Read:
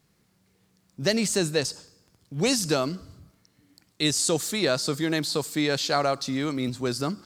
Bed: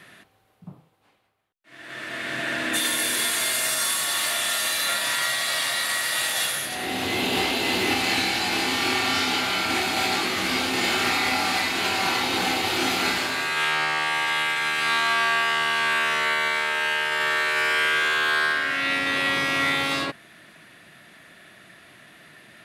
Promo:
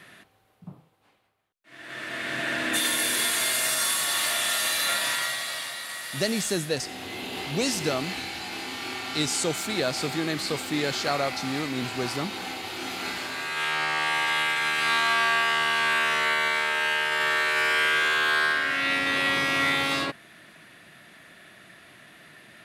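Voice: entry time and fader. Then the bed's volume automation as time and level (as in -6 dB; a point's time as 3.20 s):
5.15 s, -3.0 dB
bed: 5.03 s -1 dB
5.79 s -10.5 dB
12.80 s -10.5 dB
14.08 s -1 dB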